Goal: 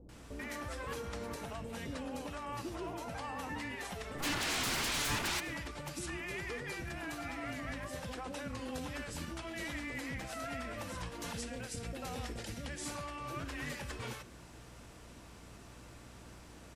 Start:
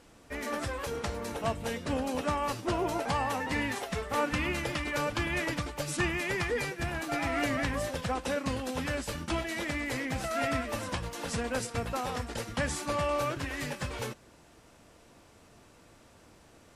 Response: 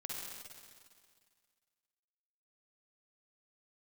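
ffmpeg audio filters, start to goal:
-filter_complex "[0:a]asettb=1/sr,asplit=3[link_01][link_02][link_03];[link_01]atrim=end=11.244[link_04];[link_02]atrim=start=11.24:end=12.77,asetpts=PTS-STARTPTS,afade=type=in:duration=0.004:curve=qsin,afade=type=out:start_time=1.526:duration=0.004:curve=qsin,equalizer=frequency=1100:width=1.5:gain=-8.5[link_05];[link_03]atrim=start=12.766[link_06];[link_04][link_05]acrossfade=duration=0.004:curve1=hsin:curve2=qsin[link_07];[link_07][link_06]acrossfade=duration=0.004:curve1=qsin:curve2=hsin,acompressor=threshold=-39dB:ratio=6,alimiter=level_in=10.5dB:limit=-24dB:level=0:latency=1:release=105,volume=-10.5dB,asplit=3[link_08][link_09][link_10];[link_08]afade=type=out:start_time=4.13:duration=0.02[link_11];[link_09]aeval=exprs='0.0188*sin(PI/2*5.01*val(0)/0.0188)':channel_layout=same,afade=type=in:start_time=4.13:duration=0.02,afade=type=out:start_time=5.3:duration=0.02[link_12];[link_10]afade=type=in:start_time=5.3:duration=0.02[link_13];[link_11][link_12][link_13]amix=inputs=3:normalize=0,aeval=exprs='val(0)+0.001*(sin(2*PI*60*n/s)+sin(2*PI*2*60*n/s)/2+sin(2*PI*3*60*n/s)/3+sin(2*PI*4*60*n/s)/4+sin(2*PI*5*60*n/s)/5)':channel_layout=same,acrossover=split=570[link_14][link_15];[link_15]adelay=90[link_16];[link_14][link_16]amix=inputs=2:normalize=0,asplit=2[link_17][link_18];[1:a]atrim=start_sample=2205,atrim=end_sample=6174[link_19];[link_18][link_19]afir=irnorm=-1:irlink=0,volume=-10.5dB[link_20];[link_17][link_20]amix=inputs=2:normalize=0,volume=2dB"

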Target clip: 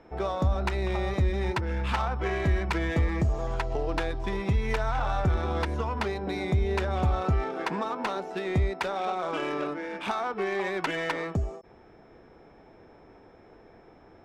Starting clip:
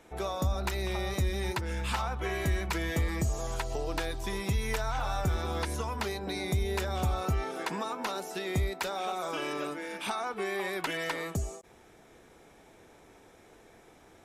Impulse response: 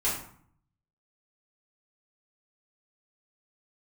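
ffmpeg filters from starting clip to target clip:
-af "aeval=exprs='val(0)+0.001*sin(2*PI*5300*n/s)':channel_layout=same,adynamicsmooth=sensitivity=3.5:basefreq=1900,volume=4.5dB"

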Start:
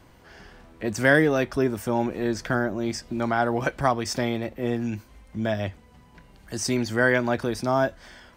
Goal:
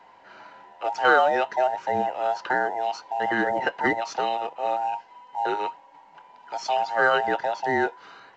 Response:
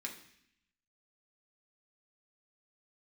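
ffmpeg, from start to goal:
-filter_complex "[0:a]afftfilt=real='real(if(between(b,1,1008),(2*floor((b-1)/48)+1)*48-b,b),0)':imag='imag(if(between(b,1,1008),(2*floor((b-1)/48)+1)*48-b,b),0)*if(between(b,1,1008),-1,1)':win_size=2048:overlap=0.75,highpass=150,lowpass=4200,acrossover=split=360|560|3300[link_01][link_02][link_03][link_04];[link_03]acontrast=22[link_05];[link_01][link_02][link_05][link_04]amix=inputs=4:normalize=0,volume=-3dB" -ar 16000 -c:a pcm_mulaw

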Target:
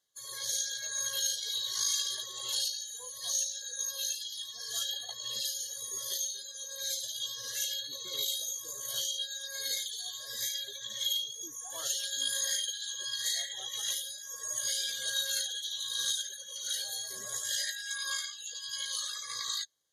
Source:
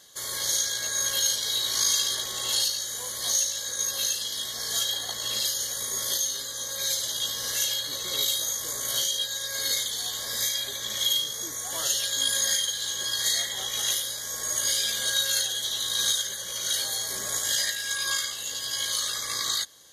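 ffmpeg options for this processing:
ffmpeg -i in.wav -af "afftdn=noise_reduction=21:noise_floor=-35,volume=-6.5dB" out.wav

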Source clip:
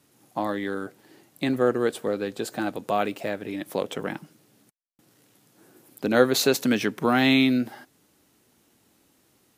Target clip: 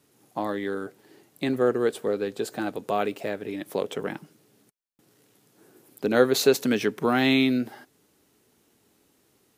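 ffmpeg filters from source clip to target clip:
ffmpeg -i in.wav -af "equalizer=frequency=420:width_type=o:width=0.26:gain=6.5,volume=-2dB" out.wav

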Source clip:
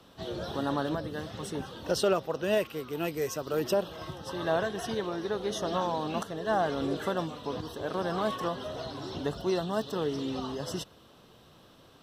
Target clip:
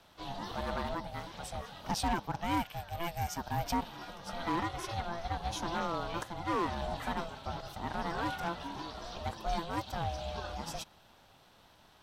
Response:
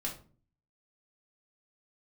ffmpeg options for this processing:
-af "asoftclip=type=hard:threshold=-23dB,highpass=270,aeval=exprs='val(0)*sin(2*PI*340*n/s)':channel_layout=same"

